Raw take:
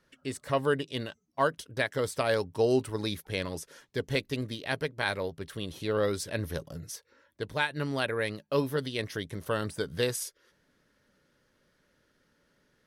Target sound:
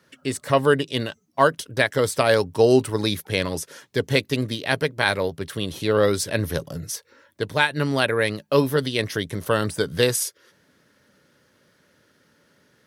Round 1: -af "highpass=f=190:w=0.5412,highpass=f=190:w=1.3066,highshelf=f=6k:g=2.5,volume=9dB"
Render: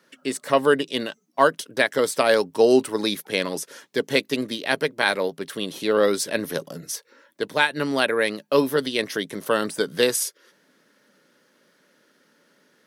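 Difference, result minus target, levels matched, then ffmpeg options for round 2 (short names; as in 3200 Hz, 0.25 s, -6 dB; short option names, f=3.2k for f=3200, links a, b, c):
125 Hz band -11.5 dB
-af "highpass=f=77:w=0.5412,highpass=f=77:w=1.3066,highshelf=f=6k:g=2.5,volume=9dB"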